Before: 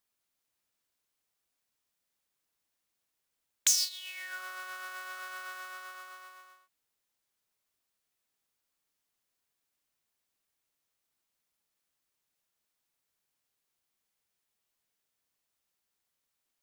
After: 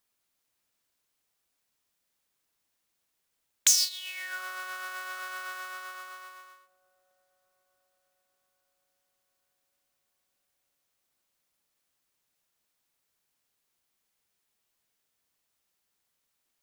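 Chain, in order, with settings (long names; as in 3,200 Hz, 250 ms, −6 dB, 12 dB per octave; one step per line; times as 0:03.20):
delay with a low-pass on its return 861 ms, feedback 55%, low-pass 440 Hz, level −16 dB
level +4 dB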